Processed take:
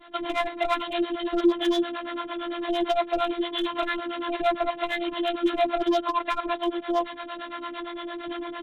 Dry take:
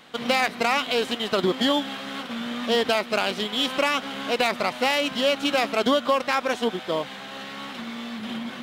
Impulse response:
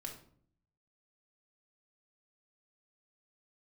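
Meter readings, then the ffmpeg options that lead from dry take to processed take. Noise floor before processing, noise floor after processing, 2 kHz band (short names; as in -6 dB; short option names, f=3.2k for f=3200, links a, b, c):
-38 dBFS, -39 dBFS, -7.0 dB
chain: -filter_complex "[0:a]afftfilt=real='hypot(re,im)*cos(PI*b)':imag='0':win_size=512:overlap=0.75,aresample=8000,asoftclip=type=tanh:threshold=-23dB,aresample=44100,acrossover=split=230[a][b];[a]acompressor=threshold=-34dB:ratio=2[c];[c][b]amix=inputs=2:normalize=0,volume=23dB,asoftclip=hard,volume=-23dB,acrossover=split=470[d][e];[d]aeval=exprs='val(0)*(1-1/2+1/2*cos(2*PI*8.8*n/s))':c=same[f];[e]aeval=exprs='val(0)*(1-1/2-1/2*cos(2*PI*8.8*n/s))':c=same[g];[f][g]amix=inputs=2:normalize=0,aecho=1:1:6:0.9,volume=7.5dB"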